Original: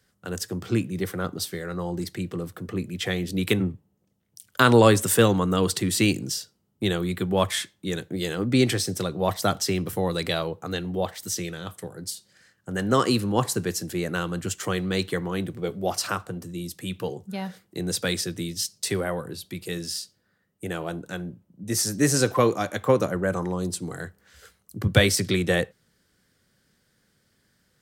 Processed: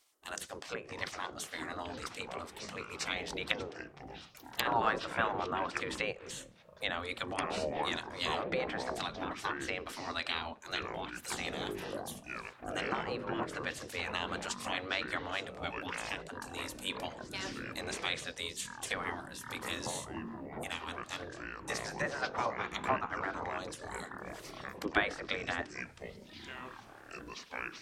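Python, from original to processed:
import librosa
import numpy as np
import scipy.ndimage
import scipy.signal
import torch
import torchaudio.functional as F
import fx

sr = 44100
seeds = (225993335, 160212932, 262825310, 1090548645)

y = fx.env_lowpass_down(x, sr, base_hz=1200.0, full_db=-18.5)
y = fx.spec_gate(y, sr, threshold_db=-15, keep='weak')
y = fx.echo_pitch(y, sr, ms=504, semitones=-7, count=3, db_per_echo=-6.0)
y = y * librosa.db_to_amplitude(1.5)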